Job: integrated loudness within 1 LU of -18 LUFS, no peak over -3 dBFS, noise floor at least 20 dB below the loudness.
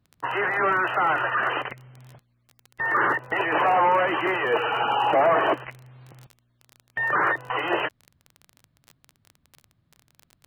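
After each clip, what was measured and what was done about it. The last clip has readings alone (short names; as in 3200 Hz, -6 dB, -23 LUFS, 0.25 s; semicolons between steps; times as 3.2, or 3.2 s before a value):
ticks 24/s; loudness -23.0 LUFS; peak -10.0 dBFS; loudness target -18.0 LUFS
-> de-click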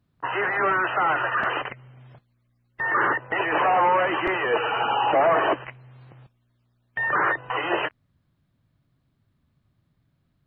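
ticks 0.57/s; loudness -23.0 LUFS; peak -10.0 dBFS; loudness target -18.0 LUFS
-> gain +5 dB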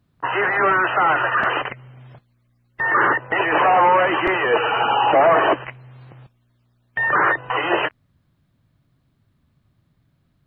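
loudness -18.0 LUFS; peak -5.0 dBFS; noise floor -66 dBFS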